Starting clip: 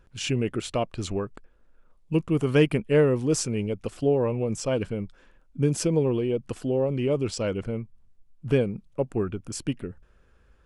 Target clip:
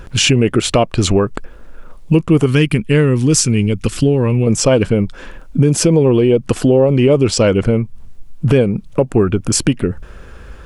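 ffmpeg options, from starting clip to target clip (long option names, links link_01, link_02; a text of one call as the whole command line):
ffmpeg -i in.wav -filter_complex "[0:a]asettb=1/sr,asplit=3[link_01][link_02][link_03];[link_01]atrim=end=2.464[link_04];[link_02]atrim=start=2.46:end=4.47,asetpts=PTS-STARTPTS,afade=type=in:duration=0.004:curve=qsin,afade=type=out:start_time=2.006:duration=0.004:curve=qsin,equalizer=frequency=650:width=0.85:gain=-14[link_05];[link_03]atrim=start=4.466[link_06];[link_04][link_05]acrossfade=duration=0.004:curve1=hsin:curve2=qsin[link_07];[link_07][link_06]acrossfade=duration=0.004:curve1=qsin:curve2=hsin,acompressor=threshold=-38dB:ratio=2.5,alimiter=level_in=25.5dB:limit=-1dB:release=50:level=0:latency=1,volume=-1dB" out.wav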